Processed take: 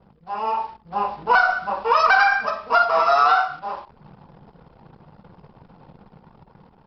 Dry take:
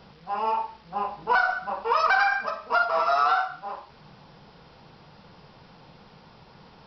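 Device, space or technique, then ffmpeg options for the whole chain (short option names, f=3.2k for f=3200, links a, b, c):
voice memo with heavy noise removal: -af "anlmdn=0.01,dynaudnorm=f=260:g=5:m=6dB"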